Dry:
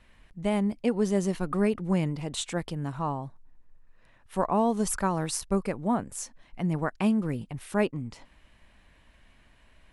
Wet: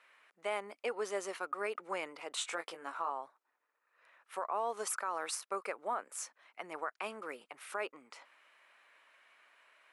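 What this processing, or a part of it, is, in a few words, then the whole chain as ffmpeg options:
laptop speaker: -filter_complex "[0:a]asettb=1/sr,asplit=3[link_01][link_02][link_03];[link_01]atrim=end=2.394[link_04];[link_02]atrim=start=2.39:end=3.1,asetpts=PTS-STARTPTS,afade=type=in:duration=0.004:curve=qsin,afade=type=out:start_time=0.706:duration=0.004:curve=qsin,asplit=2[link_05][link_06];[link_06]adelay=18,volume=-5.5dB[link_07];[link_05][link_07]amix=inputs=2:normalize=0,atrim=end_sample=31311[link_08];[link_03]atrim=start=3.096[link_09];[link_04][link_08]acrossfade=duration=0.004:curve1=hsin:curve2=qsin[link_10];[link_10][link_09]acrossfade=duration=0.004:curve1=qsin:curve2=hsin,highpass=frequency=440:width=0.5412,highpass=frequency=440:width=1.3066,equalizer=frequency=1300:width_type=o:width=0.59:gain=10,equalizer=frequency=2300:width_type=o:width=0.47:gain=5.5,alimiter=limit=-20dB:level=0:latency=1:release=118,volume=-5.5dB"

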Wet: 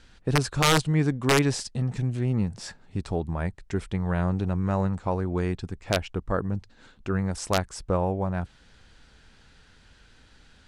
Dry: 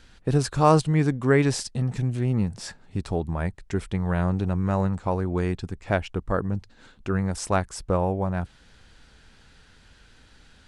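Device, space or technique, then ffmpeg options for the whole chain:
overflowing digital effects unit: -af "aeval=exprs='(mod(3.16*val(0)+1,2)-1)/3.16':channel_layout=same,lowpass=10000,volume=-1.5dB"

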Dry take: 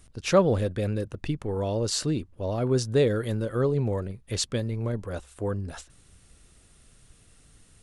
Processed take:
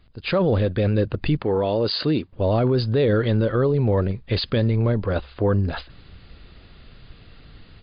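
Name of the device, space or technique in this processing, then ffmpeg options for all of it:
low-bitrate web radio: -filter_complex "[0:a]asettb=1/sr,asplit=3[link_01][link_02][link_03];[link_01]atrim=end=1.414[link_04];[link_02]atrim=start=1.41:end=2.33,asetpts=PTS-STARTPTS,afade=type=in:duration=0.004:curve=qsin,afade=type=out:start_time=0.916:duration=0.004:curve=qsin,highpass=frequency=240:poles=1[link_05];[link_03]atrim=start=2.326[link_06];[link_04][link_05]acrossfade=duration=0.004:curve1=hsin:curve2=qsin[link_07];[link_07][link_06]acrossfade=duration=0.004:curve1=qsin:curve2=hsin,dynaudnorm=framelen=190:gausssize=3:maxgain=12dB,alimiter=limit=-12dB:level=0:latency=1:release=18" -ar 11025 -c:a libmp3lame -b:a 48k

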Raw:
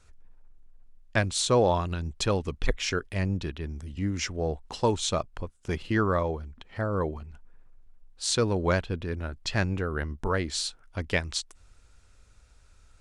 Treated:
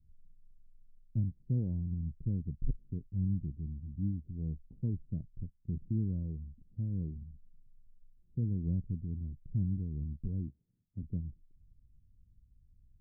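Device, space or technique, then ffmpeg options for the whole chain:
the neighbour's flat through the wall: -filter_complex "[0:a]asettb=1/sr,asplit=3[link_01][link_02][link_03];[link_01]atrim=end=10.484[link_04];[link_02]atrim=start=10.48:end=11.03,asetpts=PTS-STARTPTS,afade=type=in:duration=0.004:curve=qsin,afade=type=out:start_time=0.546:duration=0.004:curve=qsin,highpass=110[link_05];[link_03]atrim=start=11.026[link_06];[link_04][link_05]acrossfade=duration=0.004:curve1=hsin:curve2=qsin[link_07];[link_07][link_06]acrossfade=duration=0.004:curve1=qsin:curve2=hsin,lowpass=frequency=240:width=0.5412,lowpass=frequency=240:width=1.3066,equalizer=frequency=140:width_type=o:width=0.94:gain=6,volume=-6dB"

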